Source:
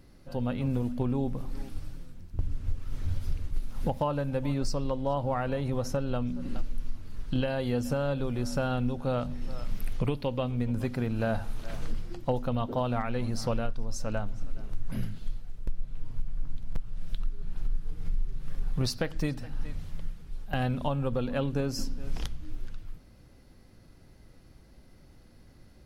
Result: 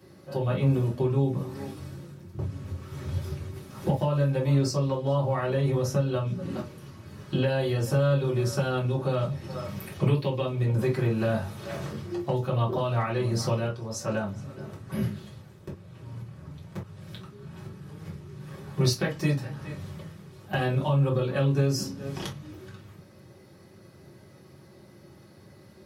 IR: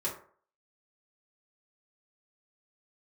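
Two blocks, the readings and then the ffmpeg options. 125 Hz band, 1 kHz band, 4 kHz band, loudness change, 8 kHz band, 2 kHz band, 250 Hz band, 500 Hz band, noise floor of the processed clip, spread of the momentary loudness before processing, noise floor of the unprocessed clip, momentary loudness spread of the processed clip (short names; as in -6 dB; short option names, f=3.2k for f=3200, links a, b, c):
+6.5 dB, +1.5 dB, +4.5 dB, +5.0 dB, n/a, +4.0 dB, +2.0 dB, +4.5 dB, -52 dBFS, 13 LU, -55 dBFS, 18 LU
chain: -filter_complex "[0:a]highpass=f=95:w=0.5412,highpass=f=95:w=1.3066[a];[1:a]atrim=start_sample=2205,atrim=end_sample=3087[b];[a][b]afir=irnorm=-1:irlink=0,acrossover=split=220|1900[c][d][e];[d]alimiter=limit=-24dB:level=0:latency=1:release=403[f];[c][f][e]amix=inputs=3:normalize=0,volume=3dB"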